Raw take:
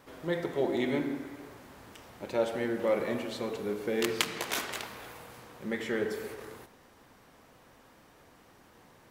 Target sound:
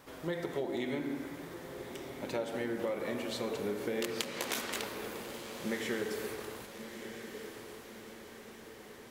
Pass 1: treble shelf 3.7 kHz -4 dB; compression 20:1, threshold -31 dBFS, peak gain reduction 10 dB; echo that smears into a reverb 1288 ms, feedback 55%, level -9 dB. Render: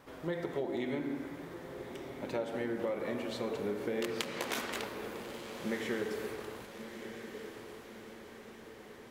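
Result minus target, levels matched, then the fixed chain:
8 kHz band -4.5 dB
treble shelf 3.7 kHz +4 dB; compression 20:1, threshold -31 dBFS, peak gain reduction 12.5 dB; echo that smears into a reverb 1288 ms, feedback 55%, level -9 dB

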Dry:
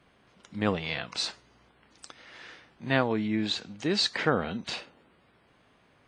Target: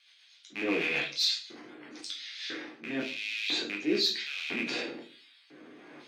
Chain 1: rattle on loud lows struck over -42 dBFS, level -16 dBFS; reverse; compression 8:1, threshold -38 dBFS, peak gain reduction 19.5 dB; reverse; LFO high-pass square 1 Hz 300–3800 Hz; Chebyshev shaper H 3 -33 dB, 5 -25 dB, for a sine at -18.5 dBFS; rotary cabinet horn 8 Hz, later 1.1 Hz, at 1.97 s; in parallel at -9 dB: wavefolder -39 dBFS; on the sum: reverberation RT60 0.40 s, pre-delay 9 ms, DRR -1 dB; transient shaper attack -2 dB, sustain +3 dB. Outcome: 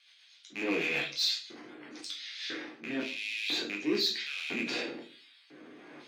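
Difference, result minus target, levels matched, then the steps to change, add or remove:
wavefolder: distortion +15 dB
change: wavefolder -30.5 dBFS

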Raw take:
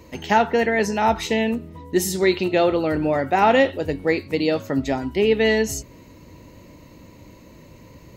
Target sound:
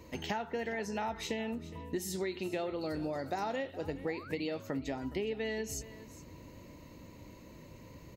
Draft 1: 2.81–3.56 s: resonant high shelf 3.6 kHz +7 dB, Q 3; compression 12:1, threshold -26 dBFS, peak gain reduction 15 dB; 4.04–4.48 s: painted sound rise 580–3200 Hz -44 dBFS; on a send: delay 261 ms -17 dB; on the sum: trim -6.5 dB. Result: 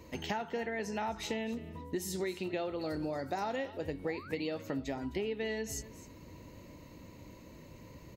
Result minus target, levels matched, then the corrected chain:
echo 155 ms early
2.81–3.56 s: resonant high shelf 3.6 kHz +7 dB, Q 3; compression 12:1, threshold -26 dBFS, peak gain reduction 15 dB; 4.04–4.48 s: painted sound rise 580–3200 Hz -44 dBFS; on a send: delay 416 ms -17 dB; on the sum: trim -6.5 dB

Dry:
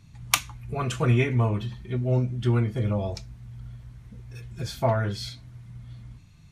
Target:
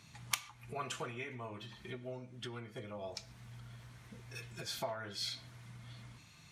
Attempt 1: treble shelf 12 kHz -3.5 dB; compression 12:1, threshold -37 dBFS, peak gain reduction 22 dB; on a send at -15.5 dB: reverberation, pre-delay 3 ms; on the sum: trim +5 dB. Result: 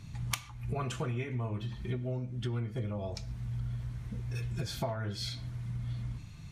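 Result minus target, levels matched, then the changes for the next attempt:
1 kHz band -4.5 dB
add after compression: high-pass 720 Hz 6 dB/octave

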